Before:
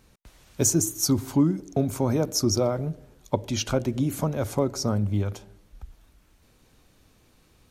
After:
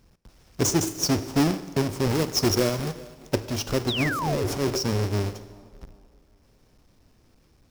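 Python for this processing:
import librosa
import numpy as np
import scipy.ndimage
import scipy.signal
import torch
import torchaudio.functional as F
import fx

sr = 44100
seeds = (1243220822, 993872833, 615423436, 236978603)

p1 = fx.halfwave_hold(x, sr)
p2 = fx.echo_wet_bandpass(p1, sr, ms=386, feedback_pct=38, hz=460.0, wet_db=-17.0)
p3 = fx.sample_hold(p2, sr, seeds[0], rate_hz=2000.0, jitter_pct=0)
p4 = p2 + F.gain(torch.from_numpy(p3), -9.5).numpy()
p5 = fx.dynamic_eq(p4, sr, hz=390.0, q=2.3, threshold_db=-34.0, ratio=4.0, max_db=7)
p6 = fx.transient(p5, sr, attack_db=-10, sustain_db=9, at=(4.15, 4.79))
p7 = fx.peak_eq(p6, sr, hz=5300.0, db=9.5, octaves=0.28)
p8 = fx.quant_companded(p7, sr, bits=4, at=(2.1, 3.34))
p9 = fx.rev_schroeder(p8, sr, rt60_s=1.3, comb_ms=33, drr_db=14.5)
p10 = fx.spec_paint(p9, sr, seeds[1], shape='fall', start_s=3.88, length_s=0.6, low_hz=330.0, high_hz=4200.0, level_db=-21.0)
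y = F.gain(torch.from_numpy(p10), -8.0).numpy()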